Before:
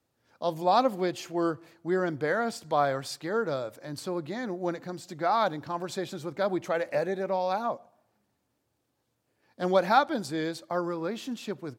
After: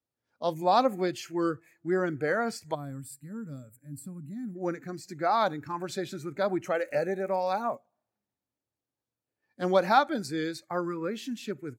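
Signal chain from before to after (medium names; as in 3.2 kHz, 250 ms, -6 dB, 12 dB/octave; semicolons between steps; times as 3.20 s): 6.74–7.74 s: crackle 87 per s -42 dBFS; spectral noise reduction 15 dB; 2.74–4.56 s: time-frequency box 290–7200 Hz -21 dB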